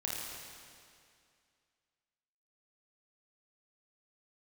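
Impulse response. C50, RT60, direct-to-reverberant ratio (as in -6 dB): -2.0 dB, 2.3 s, -4.5 dB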